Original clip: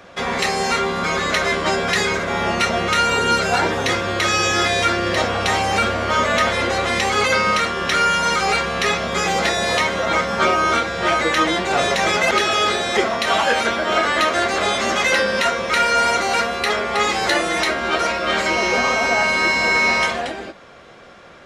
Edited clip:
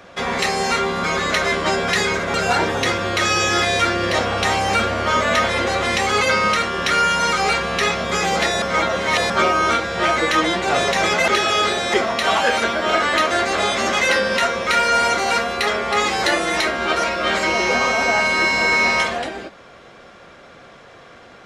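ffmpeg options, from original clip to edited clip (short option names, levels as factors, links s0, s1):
-filter_complex "[0:a]asplit=4[s0][s1][s2][s3];[s0]atrim=end=2.342[s4];[s1]atrim=start=3.368:end=9.652[s5];[s2]atrim=start=9.648:end=10.332,asetpts=PTS-STARTPTS,areverse[s6];[s3]atrim=start=10.328[s7];[s4][s5]acrossfade=d=0.004:c1=hsin:c2=hsin[s8];[s8][s6]acrossfade=d=0.004:c1=hsin:c2=hsin[s9];[s9][s7]acrossfade=d=0.004:c1=hsin:c2=hsin"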